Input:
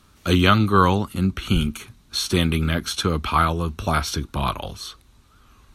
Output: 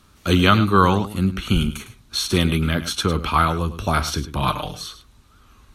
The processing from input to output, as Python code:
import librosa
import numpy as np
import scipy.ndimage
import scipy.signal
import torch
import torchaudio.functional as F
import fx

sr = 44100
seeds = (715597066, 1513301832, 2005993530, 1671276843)

p1 = fx.comb(x, sr, ms=6.6, depth=0.79, at=(4.41, 4.82))
p2 = p1 + fx.echo_single(p1, sr, ms=105, db=-13.0, dry=0)
y = F.gain(torch.from_numpy(p2), 1.0).numpy()